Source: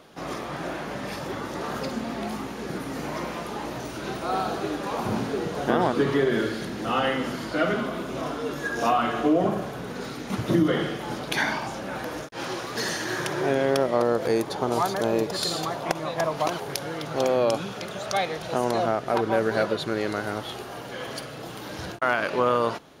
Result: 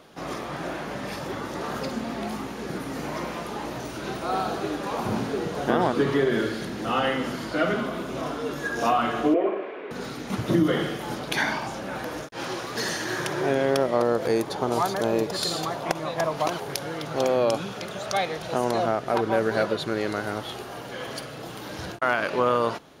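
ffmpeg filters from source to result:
-filter_complex "[0:a]asettb=1/sr,asplit=3[s0][s1][s2];[s0]atrim=end=9.344[s3];[s1]atrim=start=9.34:end=9.91,asetpts=PTS-STARTPTS,afade=t=in:d=0.004:c=qsin,afade=t=out:st=0.566:d=0.004:c=qsin,highpass=f=340:w=0.5412,highpass=f=340:w=1.3066,equalizer=f=370:t=q:w=4:g=6,equalizer=f=790:t=q:w=4:g=-6,equalizer=f=1400:t=q:w=4:g=-5,equalizer=f=2300:t=q:w=4:g=7,lowpass=f=2700:w=0.5412,lowpass=f=2700:w=1.3066[s4];[s2]atrim=start=9.906[s5];[s3][s4]acrossfade=d=0.004:c1=hsin:c2=qsin[s6];[s6][s5]acrossfade=d=0.004:c1=qsin:c2=hsin,asettb=1/sr,asplit=3[s7][s8][s9];[s7]atrim=end=10.634[s10];[s8]atrim=start=10.63:end=11.15,asetpts=PTS-STARTPTS,afade=t=in:d=0.004:c=qsin,afade=t=out:st=0.516:d=0.004:c=qsin,highshelf=f=9500:g=7.5[s11];[s9]atrim=start=11.146[s12];[s10][s11]acrossfade=d=0.004:c1=hsin:c2=qsin[s13];[s13][s12]acrossfade=d=0.004:c1=qsin:c2=hsin"

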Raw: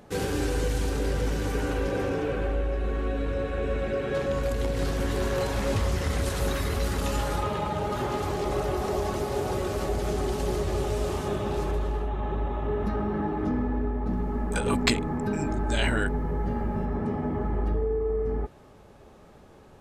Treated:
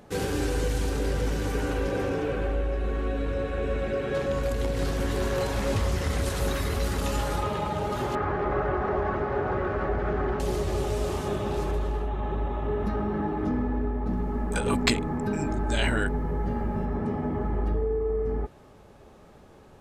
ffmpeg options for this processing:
-filter_complex "[0:a]asettb=1/sr,asplit=3[s0][s1][s2];[s0]atrim=end=8.154[s3];[s1]atrim=start=8.15:end=10.4,asetpts=PTS-STARTPTS,afade=t=in:d=0.004:c=qsin,afade=t=out:st=2.246:d=0.004:c=qsin,lowpass=f=1600:t=q:w=2.4[s4];[s2]atrim=start=10.396[s5];[s3][s4]acrossfade=d=0.004:c1=hsin:c2=qsin[s6];[s6][s5]acrossfade=d=0.004:c1=qsin:c2=hsin"

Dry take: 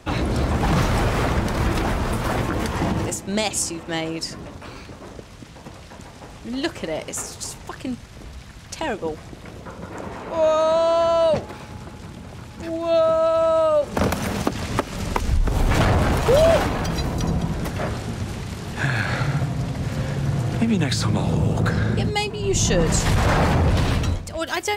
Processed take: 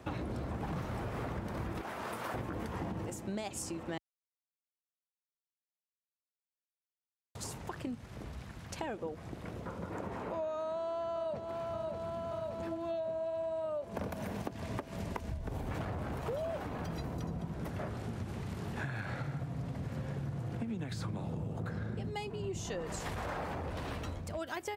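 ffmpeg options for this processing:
-filter_complex "[0:a]asettb=1/sr,asplit=3[s0][s1][s2];[s0]atrim=end=1.814[s3];[s1]atrim=start=1.81:end=2.34,asetpts=PTS-STARTPTS,afade=t=in:d=0.004:c=qsin,afade=t=out:st=0.526:d=0.004:c=qsin,highpass=f=850:p=1[s4];[s2]atrim=start=2.336[s5];[s3][s4]acrossfade=d=0.004:c1=hsin:c2=qsin[s6];[s6][s5]acrossfade=d=0.004:c1=qsin:c2=hsin,asplit=2[s7][s8];[s8]afade=t=in:st=10.57:d=0.01,afade=t=out:st=11.52:d=0.01,aecho=0:1:580|1160|1740|2320|2900|3480|4060|4640|5220|5800|6380|6960:0.334965|0.251224|0.188418|0.141314|0.105985|0.0794889|0.0596167|0.0447125|0.0335344|0.0251508|0.0188631|0.0141473[s9];[s7][s9]amix=inputs=2:normalize=0,asettb=1/sr,asplit=3[s10][s11][s12];[s10]atrim=end=12.774[s13];[s11]atrim=start=12.77:end=15.67,asetpts=PTS-STARTPTS,afade=t=in:d=0.004:c=qsin,afade=t=out:st=2.896:d=0.004:c=qsin,bandreject=f=1300:w=10[s14];[s12]atrim=start=15.666[s15];[s13][s14]acrossfade=d=0.004:c1=hsin:c2=qsin[s16];[s16][s15]acrossfade=d=0.004:c1=qsin:c2=hsin,asettb=1/sr,asplit=3[s17][s18][s19];[s17]atrim=end=22.614[s20];[s18]atrim=start=22.61:end=24.17,asetpts=PTS-STARTPTS,afade=t=in:d=0.004:c=qsin,afade=t=out:st=1.556:d=0.004:c=qsin,equalizer=f=130:w=0.63:g=-10[s21];[s19]atrim=start=24.166[s22];[s20][s21]acrossfade=d=0.004:c1=hsin:c2=qsin[s23];[s23][s22]acrossfade=d=0.004:c1=qsin:c2=hsin,asplit=3[s24][s25][s26];[s24]atrim=end=3.98,asetpts=PTS-STARTPTS,afade=t=out:st=3.976:d=0.004:c=hsin[s27];[s25]atrim=start=3.98:end=7.35,asetpts=PTS-STARTPTS,volume=0[s28];[s26]atrim=start=7.35,asetpts=PTS-STARTPTS,afade=t=in:d=0.004:c=hsin[s29];[s27][s28][s29]concat=n=3:v=0:a=1,highpass=65,equalizer=f=5900:w=0.39:g=-8.5,acompressor=threshold=0.0251:ratio=6,volume=0.631"

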